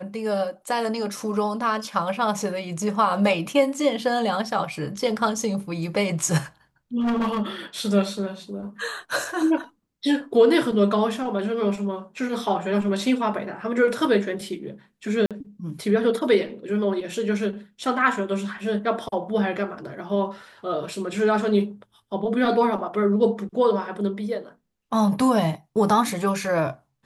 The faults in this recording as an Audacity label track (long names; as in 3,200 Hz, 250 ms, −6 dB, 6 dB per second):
7.000000	7.420000	clipping −20 dBFS
15.260000	15.310000	drop-out 47 ms